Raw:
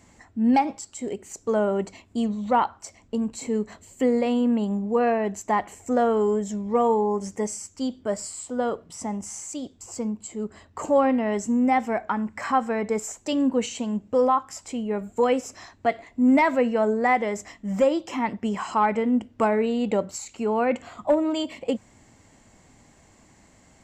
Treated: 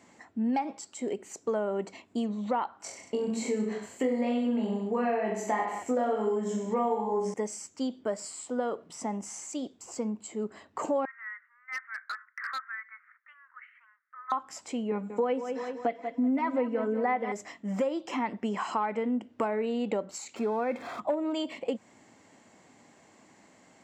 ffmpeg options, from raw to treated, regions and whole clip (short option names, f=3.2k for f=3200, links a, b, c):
-filter_complex "[0:a]asettb=1/sr,asplit=3[a][b][c];[a]atrim=end=2.784[d];[b]atrim=start=2.78:end=7.34,asetpts=PTS-STARTPTS,afade=t=in:d=0.004:c=qsin,afade=t=out:st=4.556:d=0.004:c=qsin,equalizer=f=2.2k:t=o:w=0.44:g=2.5,bandreject=f=1.1k:w=18,aecho=1:1:20|42|66.2|92.82|122.1|154.3|189.7|228.7:0.794|0.631|0.501|0.398|0.316|0.251|0.2|0.158,atrim=end_sample=201096[e];[c]atrim=start=7.336[f];[d][e]acrossfade=d=0.004:c1=hsin:c2=qsin[g];[g][f]acrossfade=d=0.004:c1=qsin:c2=hsin,asettb=1/sr,asplit=3[h][i][j];[h]atrim=end=11.054[k];[i]atrim=start=11.05:end=14.32,asetpts=PTS-STARTPTS,afade=t=in:d=0.004:c=qsin,afade=t=out:st=3.266:d=0.004:c=qsin,asuperpass=centerf=1600:order=8:qfactor=2,aeval=exprs='0.0398*(abs(mod(val(0)/0.0398+3,4)-2)-1)':c=same[l];[j]atrim=start=14.316[m];[k][l]acrossfade=d=0.004:c1=hsin:c2=qsin[n];[n][m]acrossfade=d=0.004:c1=qsin:c2=hsin,asettb=1/sr,asplit=3[o][p][q];[o]atrim=end=14.914[r];[p]atrim=start=14.91:end=17.32,asetpts=PTS-STARTPTS,afade=t=in:d=0.004:c=qsin,afade=t=out:st=2.406:d=0.004:c=qsin,lowpass=f=2.4k:p=1,aecho=1:1:4:0.76,atrim=end_sample=106281,aecho=1:1:188|376|564|752|940:0.237|0.109|0.0502|0.0231|0.0106,atrim=end_sample=106281[s];[q]atrim=start=17.316[t];[r][s]acrossfade=d=0.004:c1=hsin:c2=qsin[u];[u][t]acrossfade=d=0.004:c1=qsin:c2=hsin,asettb=1/sr,asplit=3[v][w][x];[v]atrim=end=20.364[y];[w]atrim=start=20.36:end=21,asetpts=PTS-STARTPTS,afade=t=in:d=0.004:c=qsin,afade=t=out:st=0.636:d=0.004:c=qsin,aeval=exprs='val(0)+0.5*0.015*sgn(val(0))':c=same,asuperstop=centerf=2900:order=8:qfactor=7.7,highshelf=f=6.3k:g=-11[z];[x]atrim=start=20.996[aa];[y][z]acrossfade=d=0.004:c1=hsin:c2=qsin[ab];[ab][aa]acrossfade=d=0.004:c1=qsin:c2=hsin,highpass=220,acompressor=threshold=-27dB:ratio=4,highshelf=f=6.7k:g=-9.5"